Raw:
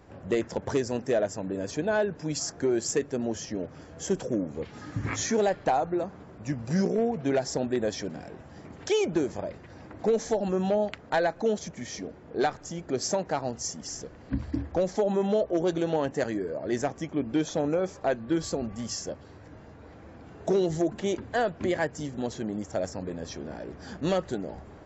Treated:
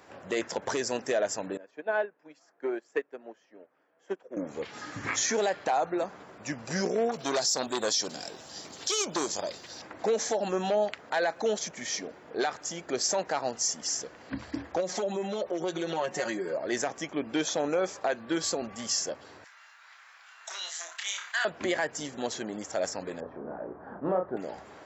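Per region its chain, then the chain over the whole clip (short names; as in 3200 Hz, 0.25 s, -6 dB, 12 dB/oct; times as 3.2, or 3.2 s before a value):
1.57–4.37 three-band isolator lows -17 dB, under 220 Hz, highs -22 dB, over 2700 Hz + upward expander 2.5:1, over -37 dBFS
7.09–9.82 resonant high shelf 3000 Hz +11.5 dB, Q 1.5 + core saturation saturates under 1600 Hz
14.8–16.57 notch 1700 Hz, Q 22 + comb 5.5 ms, depth 98% + compressor, threshold -26 dBFS
19.44–21.45 HPF 1200 Hz 24 dB/oct + flutter echo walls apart 5.1 m, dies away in 0.27 s + sustainer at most 78 dB/s
23.2–24.37 LPF 1200 Hz 24 dB/oct + doubler 33 ms -5 dB
whole clip: HPF 1000 Hz 6 dB/oct; limiter -25 dBFS; gain +7 dB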